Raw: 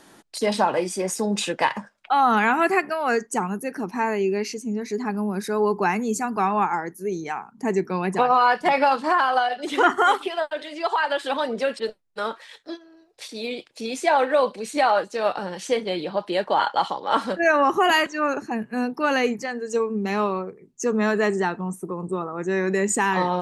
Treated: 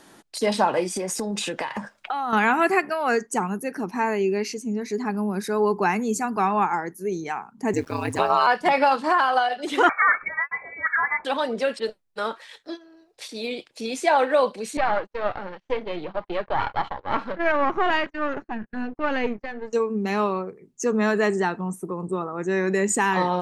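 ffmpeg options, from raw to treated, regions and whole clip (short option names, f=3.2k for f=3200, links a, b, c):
-filter_complex "[0:a]asettb=1/sr,asplit=3[a][b][c];[a]atrim=end=0.964[d];[b]atrim=start=0.96:end=2.33,asetpts=PTS-STARTPTS,afade=t=in:d=0.004:c=qsin,afade=t=out:st=1.366:d=0.004:c=qsin,acompressor=threshold=-33dB:ratio=10:attack=3.2:release=140:knee=1:detection=peak,aeval=exprs='0.211*sin(PI/2*1.78*val(0)/0.211)':c=same[e];[c]atrim=start=2.326[f];[d][e]acrossfade=d=0.004:c1=hsin:c2=qsin[g];[g][f]acrossfade=d=0.004:c1=qsin:c2=hsin,asettb=1/sr,asplit=3[h][i][j];[h]atrim=end=7.734[k];[i]atrim=start=7.73:end=8.47,asetpts=PTS-STARTPTS,afade=t=in:d=0.004:c=qsin,afade=t=out:st=0.736:d=0.004:c=qsin,highshelf=f=2.6k:g=8,aeval=exprs='val(0)*gte(abs(val(0)),0.00794)':c=same,aeval=exprs='val(0)*sin(2*PI*74*n/s)':c=same[l];[j]atrim=start=8.466[m];[k][l]acrossfade=d=0.004:c1=hsin:c2=qsin[n];[n][m]acrossfade=d=0.004:c1=qsin:c2=hsin,asettb=1/sr,asplit=3[o][p][q];[o]atrim=end=9.894[r];[p]atrim=start=9.89:end=11.25,asetpts=PTS-STARTPTS,afade=t=in:d=0.004:c=qsin,afade=t=out:st=1.356:d=0.004:c=qsin,equalizer=f=150:t=o:w=1.9:g=-8,lowpass=f=2.2k:t=q:w=0.5098,lowpass=f=2.2k:t=q:w=0.6013,lowpass=f=2.2k:t=q:w=0.9,lowpass=f=2.2k:t=q:w=2.563,afreqshift=-2600[s];[q]atrim=start=11.246[t];[r][s]acrossfade=d=0.004:c1=hsin:c2=qsin[u];[u][t]acrossfade=d=0.004:c1=qsin:c2=hsin,asettb=1/sr,asplit=3[v][w][x];[v]atrim=end=14.774[y];[w]atrim=start=14.77:end=19.73,asetpts=PTS-STARTPTS,afade=t=in:d=0.004:c=qsin,afade=t=out:st=4.956:d=0.004:c=qsin,aeval=exprs='if(lt(val(0),0),0.251*val(0),val(0))':c=same,lowpass=2.5k,agate=range=-33dB:threshold=-38dB:ratio=16:release=100:detection=peak[z];[x]atrim=start=19.726[aa];[y][z]acrossfade=d=0.004:c1=hsin:c2=qsin[ab];[ab][aa]acrossfade=d=0.004:c1=qsin:c2=hsin"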